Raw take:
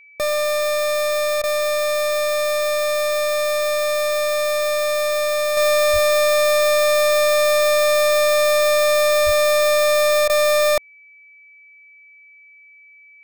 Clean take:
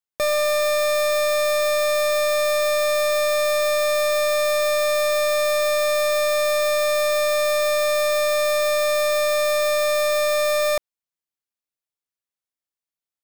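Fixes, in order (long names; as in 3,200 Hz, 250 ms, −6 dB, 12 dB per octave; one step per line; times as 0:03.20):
notch filter 2,300 Hz, Q 30
0:05.92–0:06.04: high-pass filter 140 Hz 24 dB per octave
0:09.25–0:09.37: high-pass filter 140 Hz 24 dB per octave
repair the gap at 0:01.42/0:10.28, 15 ms
level 0 dB, from 0:05.57 −4 dB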